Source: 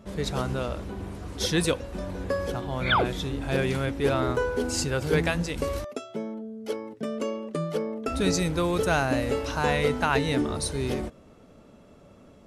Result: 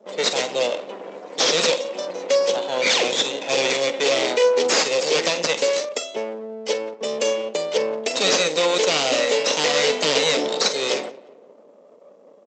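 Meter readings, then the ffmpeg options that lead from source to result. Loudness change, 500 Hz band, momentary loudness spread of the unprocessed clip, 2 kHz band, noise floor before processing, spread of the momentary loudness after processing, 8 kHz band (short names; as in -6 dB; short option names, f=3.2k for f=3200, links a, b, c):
+7.0 dB, +8.0 dB, 11 LU, +6.0 dB, -53 dBFS, 10 LU, +11.0 dB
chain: -filter_complex "[0:a]bandreject=f=266.7:t=h:w=4,bandreject=f=533.4:t=h:w=4,bandreject=f=800.1:t=h:w=4,bandreject=f=1.0668k:t=h:w=4,bandreject=f=1.3335k:t=h:w=4,bandreject=f=1.6002k:t=h:w=4,bandreject=f=1.8669k:t=h:w=4,bandreject=f=2.1336k:t=h:w=4,bandreject=f=2.4003k:t=h:w=4,bandreject=f=2.667k:t=h:w=4,bandreject=f=2.9337k:t=h:w=4,bandreject=f=3.2004k:t=h:w=4,bandreject=f=3.4671k:t=h:w=4,bandreject=f=3.7338k:t=h:w=4,bandreject=f=4.0005k:t=h:w=4,acrossover=split=320[a][b];[b]aeval=exprs='0.0631*(abs(mod(val(0)/0.0631+3,4)-2)-1)':c=same[c];[a][c]amix=inputs=2:normalize=0,afftdn=nr=29:nf=-49,asuperstop=centerf=1400:order=20:qfactor=1.9,aderivative,asplit=2[d][e];[e]adelay=45,volume=-14dB[f];[d][f]amix=inputs=2:normalize=0,asplit=2[g][h];[h]adelay=177,lowpass=f=1.3k:p=1,volume=-19dB,asplit=2[i][j];[j]adelay=177,lowpass=f=1.3k:p=1,volume=0.55,asplit=2[k][l];[l]adelay=177,lowpass=f=1.3k:p=1,volume=0.55,asplit=2[m][n];[n]adelay=177,lowpass=f=1.3k:p=1,volume=0.55,asplit=2[o][p];[p]adelay=177,lowpass=f=1.3k:p=1,volume=0.55[q];[g][i][k][m][o][q]amix=inputs=6:normalize=0,aresample=16000,aeval=exprs='max(val(0),0)':c=same,aresample=44100,acrossover=split=5100[r][s];[s]acompressor=threshold=-56dB:ratio=4:attack=1:release=60[t];[r][t]amix=inputs=2:normalize=0,highpass=f=200:w=0.5412,highpass=f=200:w=1.3066,equalizer=f=510:t=o:w=0.59:g=13,alimiter=level_in=35.5dB:limit=-1dB:release=50:level=0:latency=1,volume=-7dB"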